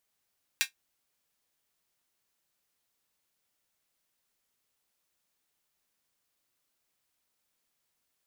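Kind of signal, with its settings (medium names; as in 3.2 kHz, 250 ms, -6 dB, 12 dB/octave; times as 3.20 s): closed hi-hat, high-pass 2 kHz, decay 0.12 s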